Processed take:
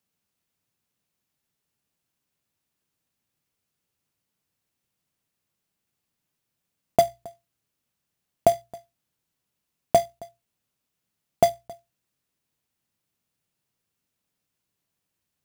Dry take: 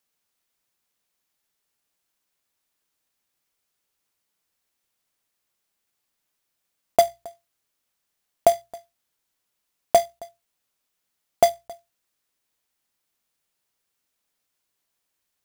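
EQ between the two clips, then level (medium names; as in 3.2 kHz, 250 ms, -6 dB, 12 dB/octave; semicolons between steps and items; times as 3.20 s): peaking EQ 130 Hz +14 dB 2.4 oct; peaking EQ 2.7 kHz +2.5 dB 0.22 oct; -4.0 dB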